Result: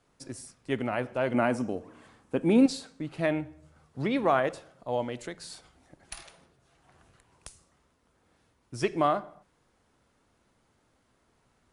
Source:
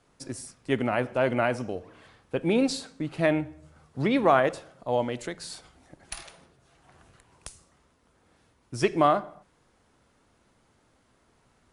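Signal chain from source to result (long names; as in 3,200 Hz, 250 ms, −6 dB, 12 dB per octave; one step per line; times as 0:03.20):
0:01.34–0:02.66: graphic EQ with 10 bands 250 Hz +9 dB, 1,000 Hz +4 dB, 4,000 Hz −3 dB, 8,000 Hz +7 dB
level −4 dB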